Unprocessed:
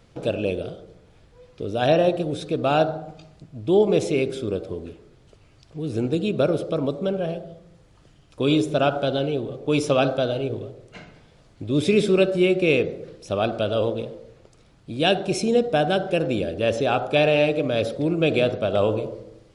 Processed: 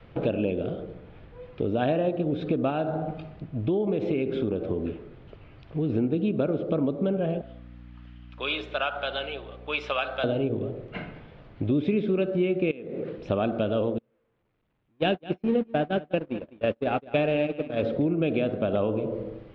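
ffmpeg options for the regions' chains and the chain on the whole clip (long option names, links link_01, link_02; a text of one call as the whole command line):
ffmpeg -i in.wav -filter_complex "[0:a]asettb=1/sr,asplit=3[link_01][link_02][link_03];[link_01]atrim=end=2.704[link_04];[link_02]atrim=start=2.7:end=5.9,asetpts=PTS-STARTPTS,afade=type=in:duration=0.004:curve=qsin,afade=type=out:start_time=3.196:duration=0.004:curve=qsin,aecho=1:1:76:0.0794,atrim=end_sample=141120,acompressor=threshold=-27dB:ratio=2:attack=3.2:release=140:knee=1:detection=peak[link_05];[link_03]atrim=start=5.896[link_06];[link_04][link_05]acrossfade=duration=0.004:curve1=hsin:curve2=qsin[link_07];[link_07][link_06]acrossfade=duration=0.004:curve1=qsin:curve2=hsin,asettb=1/sr,asplit=3[link_08][link_09][link_10];[link_08]atrim=end=7.414[link_11];[link_09]atrim=start=7.41:end=10.24,asetpts=PTS-STARTPTS,afade=type=in:duration=0.004:curve=qsin,afade=type=out:start_time=2.826:duration=0.004:curve=qsin,highpass=1200,aeval=exprs='val(0)+0.00316*(sin(2*PI*60*n/s)+sin(2*PI*2*60*n/s)/2+sin(2*PI*3*60*n/s)/3+sin(2*PI*4*60*n/s)/4+sin(2*PI*5*60*n/s)/5)':channel_layout=same[link_12];[link_10]atrim=start=10.236[link_13];[link_11][link_12]acrossfade=duration=0.004:curve1=hsin:curve2=qsin[link_14];[link_14][link_13]acrossfade=duration=0.004:curve1=qsin:curve2=hsin,asettb=1/sr,asplit=3[link_15][link_16][link_17];[link_15]atrim=end=12.714[link_18];[link_16]atrim=start=12.71:end=13.18,asetpts=PTS-STARTPTS,afade=type=in:duration=0.004:curve=qsin,afade=type=out:start_time=0.466:duration=0.004:curve=qsin,highpass=140,acompressor=threshold=-33dB:ratio=12:attack=3.2:release=140:knee=1:detection=peak[link_19];[link_17]atrim=start=13.176[link_20];[link_18][link_19]acrossfade=duration=0.004:curve1=hsin:curve2=qsin[link_21];[link_21][link_20]acrossfade=duration=0.004:curve1=qsin:curve2=hsin,asettb=1/sr,asplit=3[link_22][link_23][link_24];[link_22]atrim=end=13.984[link_25];[link_23]atrim=start=13.98:end=17.83,asetpts=PTS-STARTPTS,afade=type=in:duration=0.004:curve=qsin,afade=type=out:start_time=3.846:duration=0.004:curve=qsin,aeval=exprs='val(0)+0.5*0.0473*sgn(val(0))':channel_layout=same,agate=range=-48dB:threshold=-19dB:ratio=16:release=100:detection=peak,aecho=1:1:204:0.0891,atrim=end_sample=169785[link_26];[link_24]atrim=start=17.826[link_27];[link_25][link_26]acrossfade=duration=0.004:curve1=hsin:curve2=qsin[link_28];[link_28][link_27]acrossfade=duration=0.004:curve1=qsin:curve2=hsin,lowpass=frequency=3000:width=0.5412,lowpass=frequency=3000:width=1.3066,adynamicequalizer=threshold=0.0158:dfrequency=240:dqfactor=1.4:tfrequency=240:tqfactor=1.4:attack=5:release=100:ratio=0.375:range=4:mode=boostabove:tftype=bell,acompressor=threshold=-29dB:ratio=5,volume=5.5dB" out.wav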